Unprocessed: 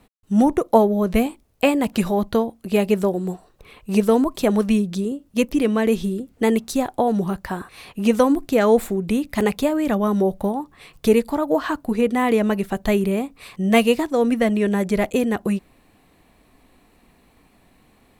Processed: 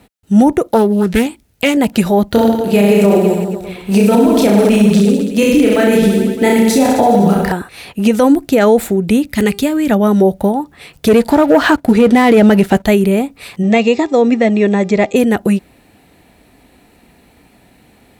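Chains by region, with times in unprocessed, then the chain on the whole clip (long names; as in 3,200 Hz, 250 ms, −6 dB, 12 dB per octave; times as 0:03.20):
0:00.69–0:01.77: drawn EQ curve 190 Hz 0 dB, 390 Hz −4 dB, 590 Hz −7 dB, 1,700 Hz +1 dB + highs frequency-modulated by the lows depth 0.46 ms
0:02.31–0:07.52: one scale factor per block 7 bits + reverse bouncing-ball delay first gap 30 ms, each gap 1.15×, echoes 10, each echo −2 dB
0:09.33–0:09.91: parametric band 730 Hz −10.5 dB 1.2 octaves + hum removal 401.2 Hz, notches 28 + hard clipping −13 dBFS
0:11.08–0:12.85: high-shelf EQ 11,000 Hz −8 dB + leveller curve on the samples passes 2
0:13.62–0:15.15: linear-phase brick-wall low-pass 8,000 Hz + hum with harmonics 400 Hz, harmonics 18, −48 dBFS −9 dB per octave + notch comb filter 1,500 Hz
whole clip: high-pass filter 48 Hz; notch filter 1,100 Hz, Q 5.7; boost into a limiter +10 dB; level −1 dB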